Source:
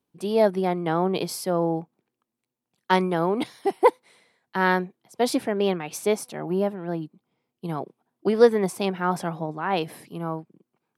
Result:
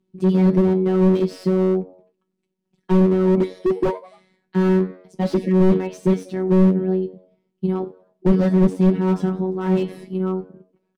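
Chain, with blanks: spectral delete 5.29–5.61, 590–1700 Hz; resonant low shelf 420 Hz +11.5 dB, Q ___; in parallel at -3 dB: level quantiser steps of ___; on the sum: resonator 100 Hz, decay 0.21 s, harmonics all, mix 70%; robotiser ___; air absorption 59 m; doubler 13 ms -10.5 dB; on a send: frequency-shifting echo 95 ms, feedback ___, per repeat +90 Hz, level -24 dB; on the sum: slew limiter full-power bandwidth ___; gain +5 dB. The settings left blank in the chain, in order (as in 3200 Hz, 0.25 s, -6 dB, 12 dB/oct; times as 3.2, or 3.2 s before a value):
1.5, 13 dB, 187 Hz, 42%, 38 Hz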